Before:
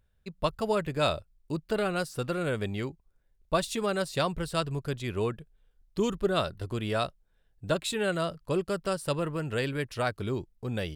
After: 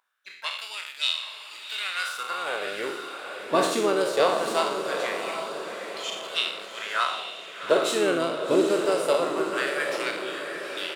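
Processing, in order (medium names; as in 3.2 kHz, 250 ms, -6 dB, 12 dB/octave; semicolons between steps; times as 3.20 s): spectral sustain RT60 0.73 s; harmony voices -4 st -8 dB, +7 st -18 dB; LFO high-pass sine 0.21 Hz 290–3300 Hz; echo that smears into a reverb 782 ms, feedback 49%, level -7 dB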